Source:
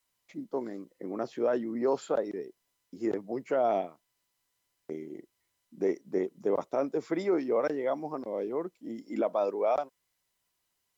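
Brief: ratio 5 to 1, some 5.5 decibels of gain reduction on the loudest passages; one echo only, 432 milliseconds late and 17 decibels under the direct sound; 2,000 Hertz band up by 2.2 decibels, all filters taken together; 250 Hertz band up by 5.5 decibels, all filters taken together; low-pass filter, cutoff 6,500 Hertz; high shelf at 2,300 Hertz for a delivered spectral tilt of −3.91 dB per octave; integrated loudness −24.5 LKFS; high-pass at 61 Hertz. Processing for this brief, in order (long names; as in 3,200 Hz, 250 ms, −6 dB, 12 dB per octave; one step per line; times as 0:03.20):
high-pass filter 61 Hz
low-pass filter 6,500 Hz
parametric band 250 Hz +7.5 dB
parametric band 2,000 Hz +6 dB
high-shelf EQ 2,300 Hz −7 dB
downward compressor 5 to 1, threshold −26 dBFS
single-tap delay 432 ms −17 dB
level +8.5 dB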